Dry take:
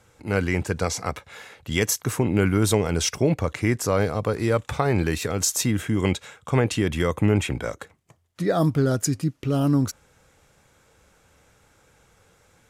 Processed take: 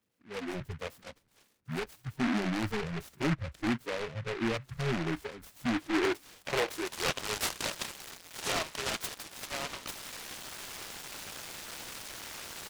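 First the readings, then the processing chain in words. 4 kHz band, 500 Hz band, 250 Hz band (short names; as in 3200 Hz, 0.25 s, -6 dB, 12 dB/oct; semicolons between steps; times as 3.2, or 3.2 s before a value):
-4.0 dB, -12.0 dB, -10.5 dB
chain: switching spikes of -24 dBFS; band-pass sweep 230 Hz -> 1800 Hz, 5.65–7.42; soft clip -30 dBFS, distortion -7 dB; frequency-shifting echo 0.171 s, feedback 44%, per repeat -95 Hz, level -20.5 dB; spectral noise reduction 23 dB; noise-modulated delay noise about 1500 Hz, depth 0.21 ms; gain +6.5 dB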